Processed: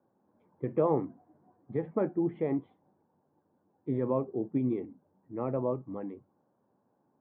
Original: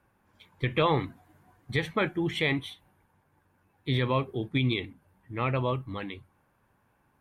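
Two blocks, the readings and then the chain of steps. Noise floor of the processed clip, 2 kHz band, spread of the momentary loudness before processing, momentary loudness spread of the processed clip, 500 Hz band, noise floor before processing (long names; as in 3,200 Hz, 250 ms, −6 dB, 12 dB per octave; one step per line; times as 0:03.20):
−74 dBFS, −23.0 dB, 14 LU, 14 LU, 0.0 dB, −70 dBFS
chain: flat-topped band-pass 390 Hz, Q 0.65
high-frequency loss of the air 440 metres
level +1.5 dB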